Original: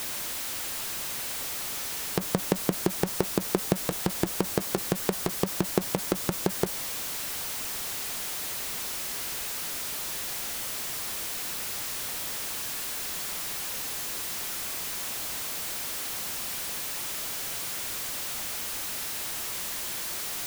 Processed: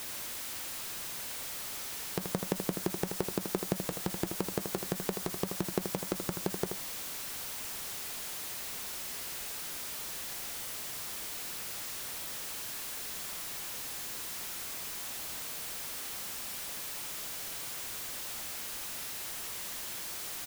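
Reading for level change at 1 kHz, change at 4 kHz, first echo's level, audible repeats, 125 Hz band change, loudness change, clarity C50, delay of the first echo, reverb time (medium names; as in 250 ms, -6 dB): -6.0 dB, -6.0 dB, -7.0 dB, 1, -6.0 dB, -6.0 dB, no reverb, 80 ms, no reverb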